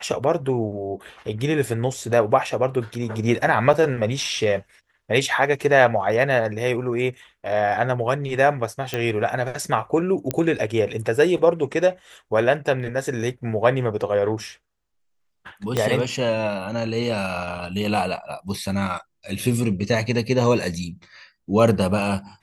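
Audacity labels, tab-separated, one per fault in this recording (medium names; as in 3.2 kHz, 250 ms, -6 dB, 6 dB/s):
3.730000	3.740000	dropout 6 ms
8.940000	8.940000	pop -10 dBFS
10.310000	10.310000	pop -7 dBFS
15.770000	15.770000	pop -8 dBFS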